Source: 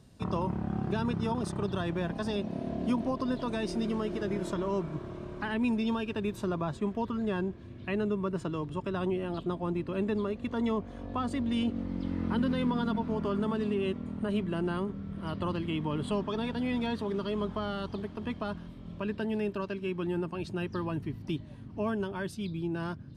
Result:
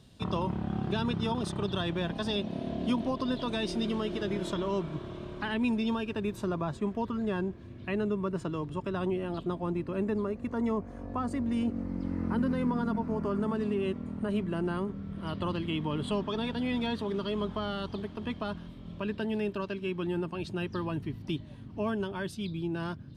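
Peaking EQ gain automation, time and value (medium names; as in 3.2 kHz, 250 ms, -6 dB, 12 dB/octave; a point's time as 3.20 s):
peaking EQ 3.4 kHz 0.7 oct
5.25 s +9 dB
6.10 s -1 dB
9.64 s -1 dB
10.24 s -12 dB
13.22 s -12 dB
13.75 s -3.5 dB
14.75 s -3.5 dB
15.34 s +4 dB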